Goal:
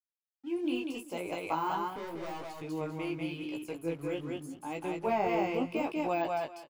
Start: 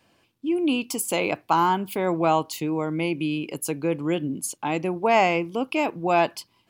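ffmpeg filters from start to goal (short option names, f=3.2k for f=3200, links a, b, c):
-filter_complex "[0:a]asettb=1/sr,asplit=3[a][b][c];[a]atrim=end=1.834[d];[b]atrim=start=1.83:end=2.57,asetpts=PTS-STARTPTS,afade=t=in:d=0.004:c=qsin,afade=t=out:st=0.736:d=0.004:c=qsin,asoftclip=type=hard:threshold=-26.5dB[e];[c]atrim=start=2.566[f];[d][e]acrossfade=d=0.004:c1=hsin:c2=qsin[g];[g][f]acrossfade=d=0.004:c1=qsin:c2=hsin,asettb=1/sr,asplit=3[h][i][j];[h]atrim=end=5.074[k];[i]atrim=start=5.07:end=5.86,asetpts=PTS-STARTPTS,afade=t=in:d=0.004:c=qsin,afade=t=out:st=0.786:d=0.004:c=qsin,equalizer=f=100:t=o:w=2.7:g=13[l];[j]atrim=start=5.856[m];[k][l]acrossfade=d=0.004:c1=hsin:c2=qsin[n];[n][m]acrossfade=d=0.004:c1=qsin:c2=hsin,aeval=exprs='sgn(val(0))*max(abs(val(0))-0.00473,0)':c=same,equalizer=f=200:t=o:w=0.31:g=-9.5,aecho=1:1:194|388|582:0.708|0.12|0.0205,deesser=0.85,flanger=delay=16.5:depth=3.9:speed=0.83,volume=-7.5dB"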